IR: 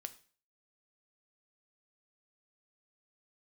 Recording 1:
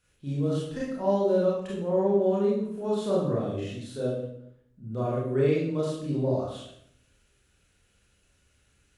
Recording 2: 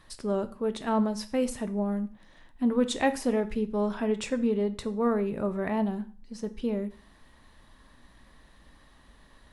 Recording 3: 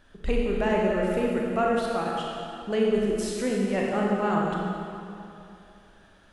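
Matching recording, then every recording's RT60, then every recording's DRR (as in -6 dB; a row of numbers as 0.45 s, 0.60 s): 2; 0.70 s, 0.45 s, 2.7 s; -6.0 dB, 9.0 dB, -3.0 dB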